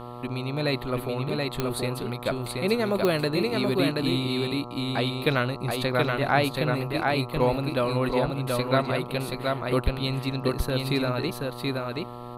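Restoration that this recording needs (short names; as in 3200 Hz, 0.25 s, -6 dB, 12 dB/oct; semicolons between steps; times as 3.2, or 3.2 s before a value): de-click; de-hum 121.2 Hz, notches 11; inverse comb 0.728 s -3 dB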